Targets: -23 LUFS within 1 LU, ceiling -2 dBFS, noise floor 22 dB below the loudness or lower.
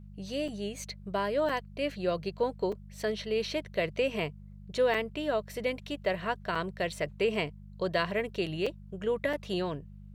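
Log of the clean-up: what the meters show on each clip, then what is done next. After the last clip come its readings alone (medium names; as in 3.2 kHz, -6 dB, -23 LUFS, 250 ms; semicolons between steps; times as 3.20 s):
dropouts 7; longest dropout 4.6 ms; hum 50 Hz; highest harmonic 200 Hz; hum level -45 dBFS; loudness -32.5 LUFS; peak level -14.5 dBFS; loudness target -23.0 LUFS
-> interpolate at 0.48/1.49/2.72/4.94/6.55/8.66/9.33 s, 4.6 ms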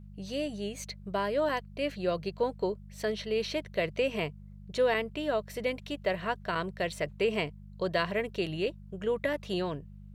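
dropouts 0; hum 50 Hz; highest harmonic 200 Hz; hum level -45 dBFS
-> de-hum 50 Hz, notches 4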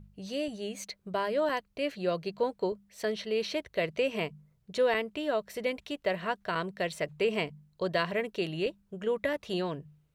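hum not found; loudness -32.5 LUFS; peak level -14.5 dBFS; loudness target -23.0 LUFS
-> trim +9.5 dB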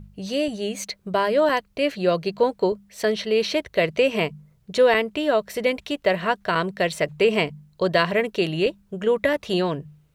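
loudness -23.0 LUFS; peak level -5.0 dBFS; noise floor -60 dBFS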